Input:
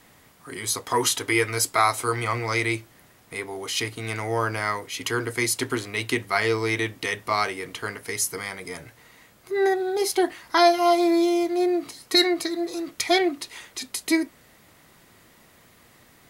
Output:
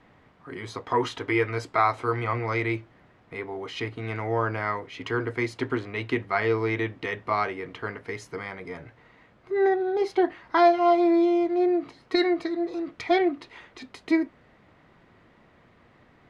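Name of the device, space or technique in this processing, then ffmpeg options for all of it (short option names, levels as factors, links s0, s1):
phone in a pocket: -af "lowpass=3100,highshelf=f=2400:g=-8.5"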